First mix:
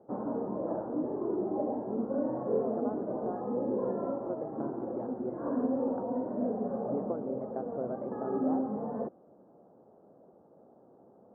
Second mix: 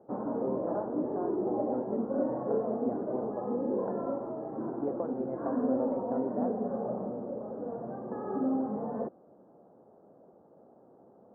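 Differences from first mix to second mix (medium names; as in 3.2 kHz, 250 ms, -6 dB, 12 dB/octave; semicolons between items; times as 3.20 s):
speech: entry -2.10 s; master: remove distance through air 270 m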